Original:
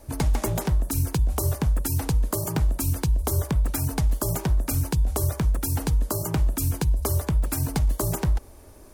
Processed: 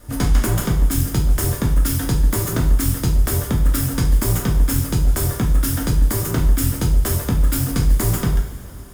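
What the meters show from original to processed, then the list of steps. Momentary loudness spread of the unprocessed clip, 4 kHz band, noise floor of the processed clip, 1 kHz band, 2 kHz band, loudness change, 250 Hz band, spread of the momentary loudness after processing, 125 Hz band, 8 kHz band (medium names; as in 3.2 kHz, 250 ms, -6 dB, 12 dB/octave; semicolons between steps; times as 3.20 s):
1 LU, +7.5 dB, -31 dBFS, +3.0 dB, +7.5 dB, +6.0 dB, +7.0 dB, 1 LU, +5.5 dB, +5.5 dB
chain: comb filter that takes the minimum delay 0.58 ms; two-slope reverb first 0.39 s, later 2.9 s, from -18 dB, DRR -1 dB; trim +3.5 dB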